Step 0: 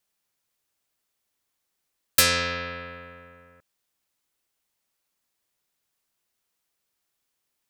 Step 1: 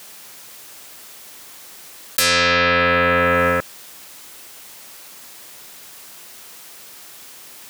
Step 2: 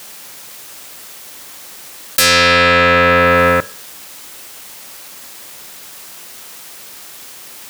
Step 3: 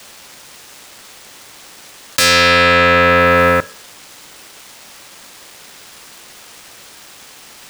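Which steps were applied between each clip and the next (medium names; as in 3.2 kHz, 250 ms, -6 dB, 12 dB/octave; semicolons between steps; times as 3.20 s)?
high-pass 170 Hz 6 dB/octave; level flattener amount 100%; trim -1.5 dB
waveshaping leveller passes 1; reverberation RT60 0.55 s, pre-delay 3 ms, DRR 15.5 dB; trim +3 dB
median filter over 3 samples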